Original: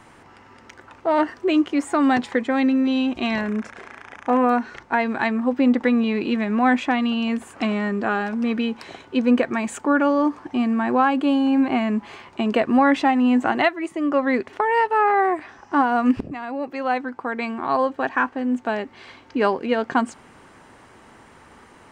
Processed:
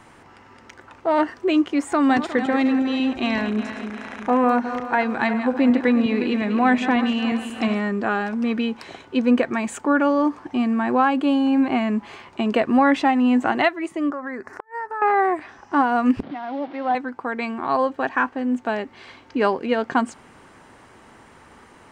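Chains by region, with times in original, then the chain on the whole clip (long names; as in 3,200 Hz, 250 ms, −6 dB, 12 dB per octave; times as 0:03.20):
0:01.92–0:07.80: feedback delay that plays each chunk backwards 180 ms, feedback 63%, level −10 dB + upward compression, threshold −27 dBFS
0:14.10–0:15.02: drawn EQ curve 580 Hz 0 dB, 1,700 Hz +9 dB, 3,300 Hz −24 dB, 5,100 Hz +2 dB + downward compressor 3 to 1, threshold −31 dBFS + gate with flip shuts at −17 dBFS, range −34 dB
0:16.23–0:16.95: linear delta modulator 32 kbit/s, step −32 dBFS + loudspeaker in its box 230–3,100 Hz, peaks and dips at 280 Hz +3 dB, 430 Hz −8 dB, 730 Hz +4 dB, 1,200 Hz −4 dB, 1,700 Hz −4 dB, 2,600 Hz −8 dB
whole clip: no processing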